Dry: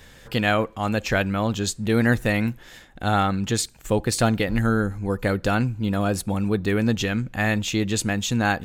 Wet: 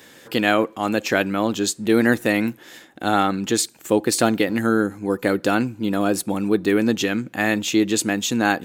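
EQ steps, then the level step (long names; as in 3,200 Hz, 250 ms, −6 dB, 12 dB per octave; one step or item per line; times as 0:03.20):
high-pass filter 210 Hz 12 dB per octave
parametric band 320 Hz +7.5 dB 0.6 octaves
high-shelf EQ 9,800 Hz +6 dB
+2.0 dB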